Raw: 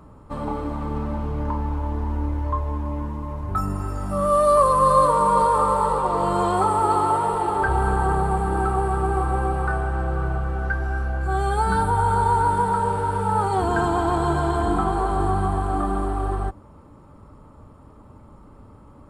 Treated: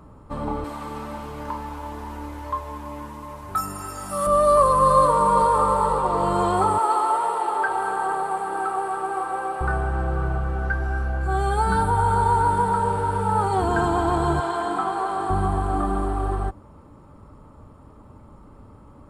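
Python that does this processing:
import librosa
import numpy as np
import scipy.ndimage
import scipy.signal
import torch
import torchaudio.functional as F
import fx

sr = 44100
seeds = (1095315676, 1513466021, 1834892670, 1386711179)

y = fx.tilt_eq(x, sr, slope=3.5, at=(0.64, 4.27))
y = fx.highpass(y, sr, hz=510.0, slope=12, at=(6.78, 9.61))
y = fx.weighting(y, sr, curve='A', at=(14.4, 15.3))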